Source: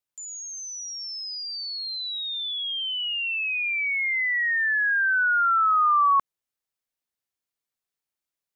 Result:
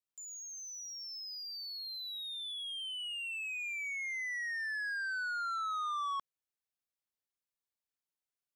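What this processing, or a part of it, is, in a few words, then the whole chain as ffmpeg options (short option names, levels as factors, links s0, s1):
saturation between pre-emphasis and de-emphasis: -af "highshelf=f=2600:g=8.5,asoftclip=type=tanh:threshold=0.0562,highshelf=f=2600:g=-8.5,volume=0.398"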